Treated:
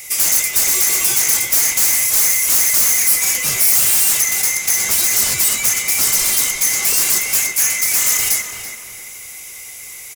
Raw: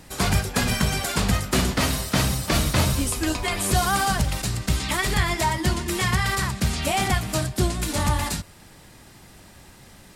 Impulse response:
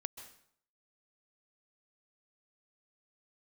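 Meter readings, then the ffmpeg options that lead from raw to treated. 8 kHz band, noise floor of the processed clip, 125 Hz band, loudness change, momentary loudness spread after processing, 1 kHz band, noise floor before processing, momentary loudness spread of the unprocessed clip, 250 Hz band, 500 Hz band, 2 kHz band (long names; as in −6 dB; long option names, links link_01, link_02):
+17.0 dB, −34 dBFS, −16.5 dB, +11.0 dB, 19 LU, −6.5 dB, −49 dBFS, 4 LU, −12.5 dB, −6.5 dB, +5.5 dB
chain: -filter_complex "[0:a]afftfilt=real='real(if(lt(b,920),b+92*(1-2*mod(floor(b/92),2)),b),0)':imag='imag(if(lt(b,920),b+92*(1-2*mod(floor(b/92),2)),b),0)':win_size=2048:overlap=0.75,aeval=exprs='0.398*sin(PI/2*6.31*val(0)/0.398)':channel_layout=same,asplit=2[link_01][link_02];[link_02]adelay=334,lowpass=frequency=2600:poles=1,volume=-6dB,asplit=2[link_03][link_04];[link_04]adelay=334,lowpass=frequency=2600:poles=1,volume=0.41,asplit=2[link_05][link_06];[link_06]adelay=334,lowpass=frequency=2600:poles=1,volume=0.41,asplit=2[link_07][link_08];[link_08]adelay=334,lowpass=frequency=2600:poles=1,volume=0.41,asplit=2[link_09][link_10];[link_10]adelay=334,lowpass=frequency=2600:poles=1,volume=0.41[link_11];[link_03][link_05][link_07][link_09][link_11]amix=inputs=5:normalize=0[link_12];[link_01][link_12]amix=inputs=2:normalize=0,aexciter=amount=5:drive=5.9:freq=5000,volume=-14dB"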